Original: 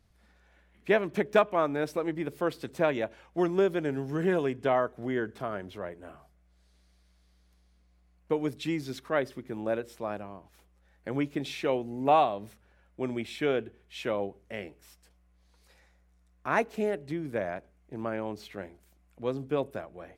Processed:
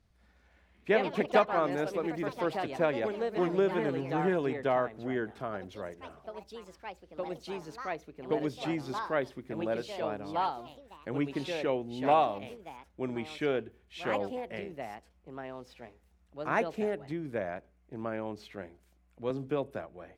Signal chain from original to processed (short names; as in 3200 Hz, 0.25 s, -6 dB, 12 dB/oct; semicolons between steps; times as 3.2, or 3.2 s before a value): high shelf 9100 Hz -9 dB; echoes that change speed 0.199 s, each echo +3 st, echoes 3, each echo -6 dB; 19.3–19.87 three-band squash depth 40%; gain -2.5 dB